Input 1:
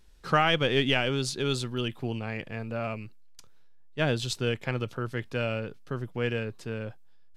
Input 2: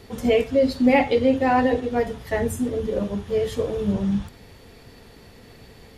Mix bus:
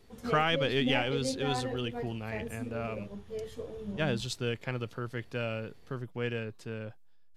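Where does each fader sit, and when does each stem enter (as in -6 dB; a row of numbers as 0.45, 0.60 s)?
-4.5, -16.0 dB; 0.00, 0.00 s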